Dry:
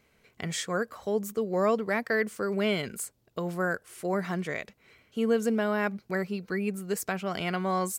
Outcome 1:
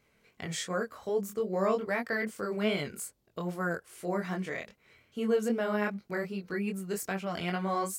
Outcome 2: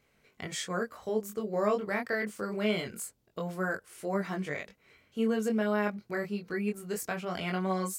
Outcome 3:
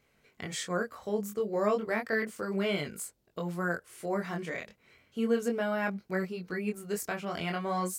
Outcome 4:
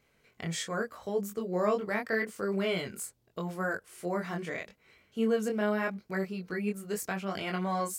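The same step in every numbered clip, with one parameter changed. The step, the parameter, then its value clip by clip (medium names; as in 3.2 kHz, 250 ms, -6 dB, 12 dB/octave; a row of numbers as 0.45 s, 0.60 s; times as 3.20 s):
chorus, rate: 2.5 Hz, 0.24 Hz, 0.35 Hz, 0.81 Hz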